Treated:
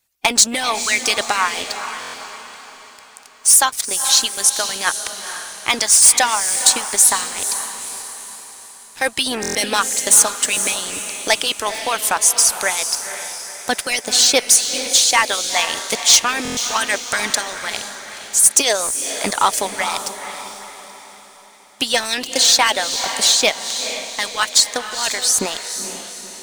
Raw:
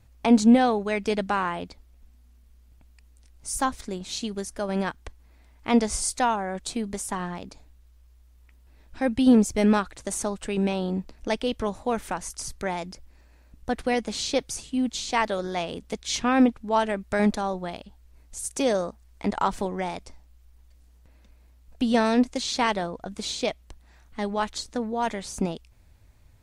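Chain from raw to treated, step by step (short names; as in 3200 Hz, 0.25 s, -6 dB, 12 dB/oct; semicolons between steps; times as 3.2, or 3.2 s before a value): tilt +4.5 dB/oct; sample leveller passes 3; harmonic-percussive split harmonic -16 dB; diffused feedback echo 0.476 s, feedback 47%, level -9 dB; stuck buffer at 2/9.41/16.43, samples 1024, times 5; gain +1 dB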